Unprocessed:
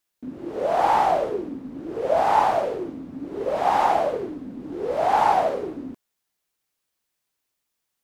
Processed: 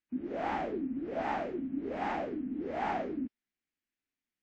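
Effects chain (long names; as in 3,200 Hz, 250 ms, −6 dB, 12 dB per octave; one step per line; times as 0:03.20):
octave-band graphic EQ 125/250/500/1,000/2,000/4,000/8,000 Hz −8/+8/−8/−11/+4/−6/+7 dB
phase-vocoder stretch with locked phases 0.55×
high-frequency loss of the air 240 metres
level −2.5 dB
WMA 128 kbit/s 44,100 Hz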